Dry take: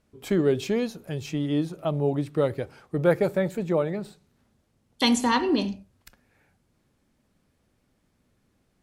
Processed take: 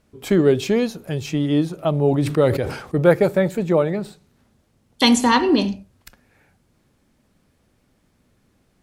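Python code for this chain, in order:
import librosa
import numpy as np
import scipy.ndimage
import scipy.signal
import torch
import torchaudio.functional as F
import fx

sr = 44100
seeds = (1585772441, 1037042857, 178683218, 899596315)

y = fx.sustainer(x, sr, db_per_s=78.0, at=(2.0, 3.07))
y = y * librosa.db_to_amplitude(6.5)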